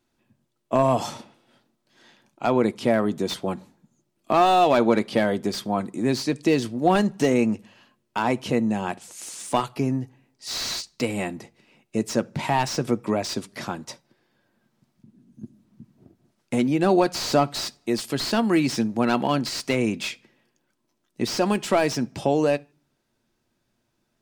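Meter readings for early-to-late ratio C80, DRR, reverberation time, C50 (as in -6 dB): 33.5 dB, 11.5 dB, no single decay rate, 27.5 dB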